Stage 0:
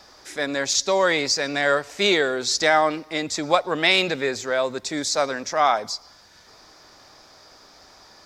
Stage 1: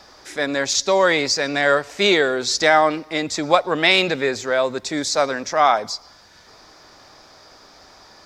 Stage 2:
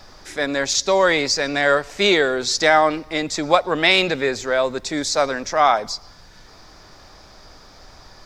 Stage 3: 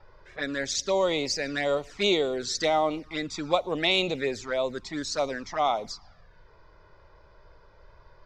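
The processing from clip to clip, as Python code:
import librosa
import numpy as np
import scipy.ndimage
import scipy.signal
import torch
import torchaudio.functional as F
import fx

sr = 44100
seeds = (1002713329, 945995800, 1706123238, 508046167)

y1 = fx.high_shelf(x, sr, hz=5500.0, db=-4.5)
y1 = y1 * librosa.db_to_amplitude(3.5)
y2 = fx.dmg_noise_colour(y1, sr, seeds[0], colour='brown', level_db=-47.0)
y3 = fx.env_flanger(y2, sr, rest_ms=2.2, full_db=-15.0)
y3 = fx.env_lowpass(y3, sr, base_hz=1700.0, full_db=-19.0)
y3 = y3 * librosa.db_to_amplitude(-6.0)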